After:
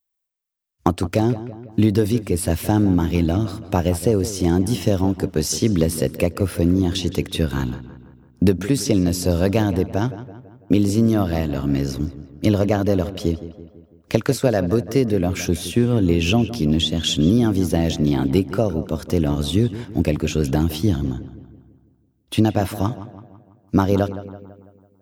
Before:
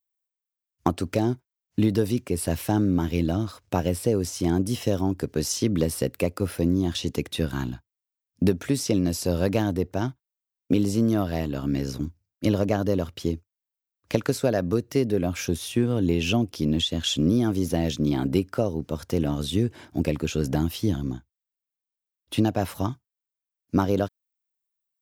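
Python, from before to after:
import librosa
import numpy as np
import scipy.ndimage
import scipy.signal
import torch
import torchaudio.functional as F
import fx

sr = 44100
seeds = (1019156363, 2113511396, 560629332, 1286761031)

y = fx.low_shelf(x, sr, hz=65.0, db=6.5)
y = fx.echo_filtered(y, sr, ms=166, feedback_pct=52, hz=2900.0, wet_db=-13.5)
y = y * librosa.db_to_amplitude(4.5)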